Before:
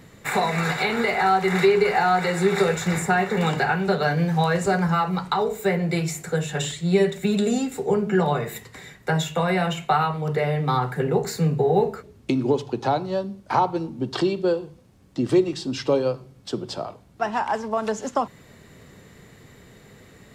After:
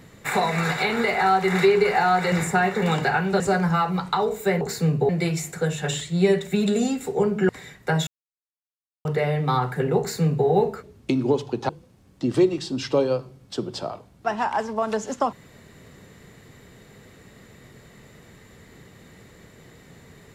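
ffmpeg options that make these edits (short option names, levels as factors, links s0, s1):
-filter_complex "[0:a]asplit=9[s0][s1][s2][s3][s4][s5][s6][s7][s8];[s0]atrim=end=2.322[s9];[s1]atrim=start=2.868:end=3.952[s10];[s2]atrim=start=4.588:end=5.802[s11];[s3]atrim=start=11.188:end=11.672[s12];[s4]atrim=start=5.798:end=8.202[s13];[s5]atrim=start=8.688:end=9.27,asetpts=PTS-STARTPTS,afade=t=out:st=0.578:d=0.004:c=hsin[s14];[s6]atrim=start=9.27:end=10.25,asetpts=PTS-STARTPTS,volume=0[s15];[s7]atrim=start=10.25:end=12.892,asetpts=PTS-STARTPTS,afade=t=in:d=0.004:c=hsin[s16];[s8]atrim=start=14.638[s17];[s9][s10]acrossfade=d=0.004:c1=hsin:c2=hsin[s18];[s18][s11]acrossfade=d=0.004:c1=hsin:c2=hsin[s19];[s19][s12]acrossfade=d=0.004:c1=hsin:c2=hsin[s20];[s20][s13]acrossfade=d=0.004:c1=hsin:c2=hsin[s21];[s14][s15][s16]concat=n=3:v=0:a=1[s22];[s21][s22]acrossfade=d=0.004:c1=hsin:c2=hsin[s23];[s23][s17]acrossfade=d=0.004:c1=hsin:c2=hsin"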